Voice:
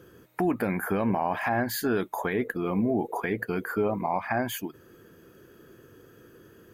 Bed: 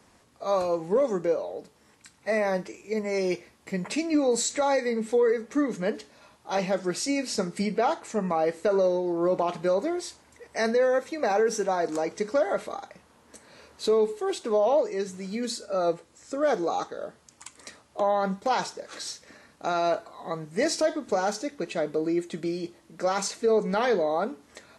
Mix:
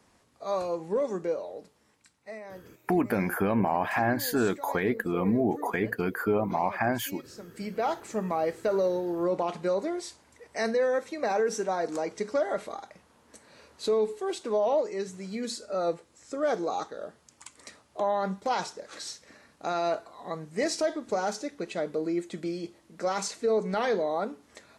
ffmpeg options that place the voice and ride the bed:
-filter_complex "[0:a]adelay=2500,volume=1.06[s0];[1:a]volume=3.35,afade=t=out:st=1.65:d=0.75:silence=0.211349,afade=t=in:st=7.45:d=0.46:silence=0.177828[s1];[s0][s1]amix=inputs=2:normalize=0"

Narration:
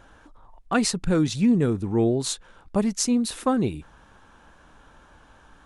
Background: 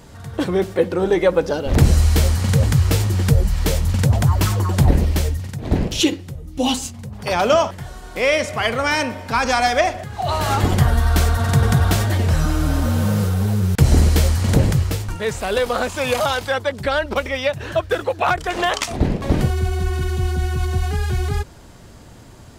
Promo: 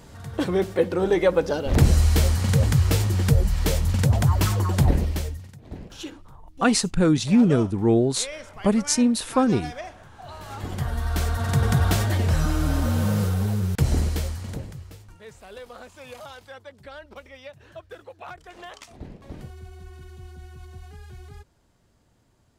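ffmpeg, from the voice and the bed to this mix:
-filter_complex "[0:a]adelay=5900,volume=1.33[s0];[1:a]volume=3.98,afade=t=out:st=4.73:d=0.9:silence=0.158489,afade=t=in:st=10.48:d=1.37:silence=0.16788,afade=t=out:st=13.3:d=1.37:silence=0.133352[s1];[s0][s1]amix=inputs=2:normalize=0"

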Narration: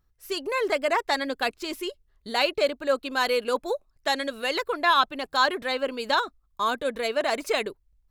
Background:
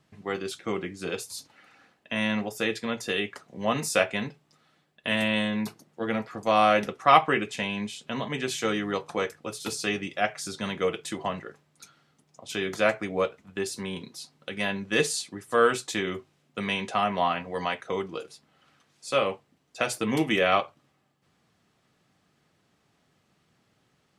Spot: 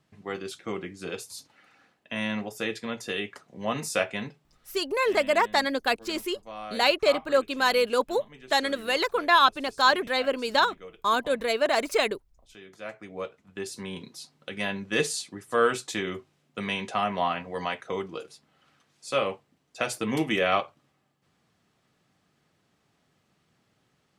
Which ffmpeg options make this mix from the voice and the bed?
-filter_complex "[0:a]adelay=4450,volume=1.19[s0];[1:a]volume=5.01,afade=t=out:st=4.73:d=0.28:silence=0.16788,afade=t=in:st=12.78:d=1.29:silence=0.141254[s1];[s0][s1]amix=inputs=2:normalize=0"

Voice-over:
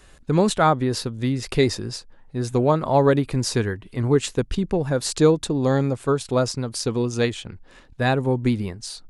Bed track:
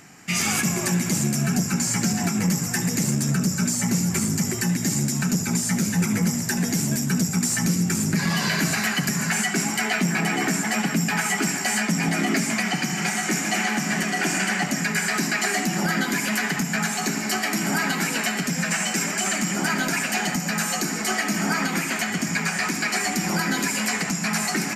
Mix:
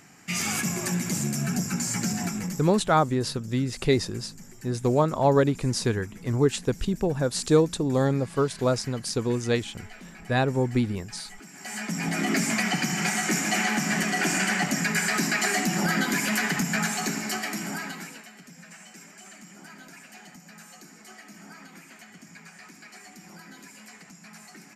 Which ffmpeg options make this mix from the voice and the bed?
-filter_complex "[0:a]adelay=2300,volume=0.708[s0];[1:a]volume=7.08,afade=t=out:st=2.21:d=0.52:silence=0.11885,afade=t=in:st=11.51:d=0.94:silence=0.0794328,afade=t=out:st=16.74:d=1.51:silence=0.0841395[s1];[s0][s1]amix=inputs=2:normalize=0"

